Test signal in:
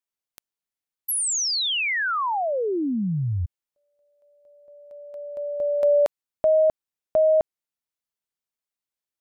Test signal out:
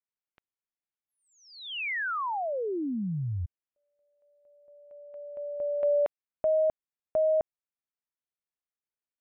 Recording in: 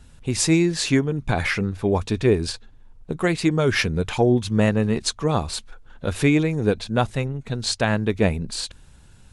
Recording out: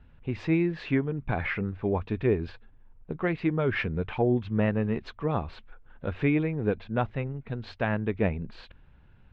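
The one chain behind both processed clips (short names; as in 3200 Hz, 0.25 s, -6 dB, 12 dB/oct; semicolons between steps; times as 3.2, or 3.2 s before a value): LPF 2700 Hz 24 dB/oct; gain -6.5 dB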